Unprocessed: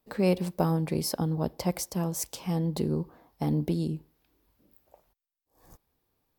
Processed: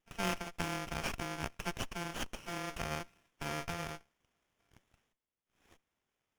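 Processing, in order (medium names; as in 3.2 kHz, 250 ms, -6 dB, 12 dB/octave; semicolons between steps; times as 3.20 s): bit-reversed sample order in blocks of 64 samples; band-pass filter 3.3 kHz, Q 3.3; sliding maximum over 9 samples; trim +8.5 dB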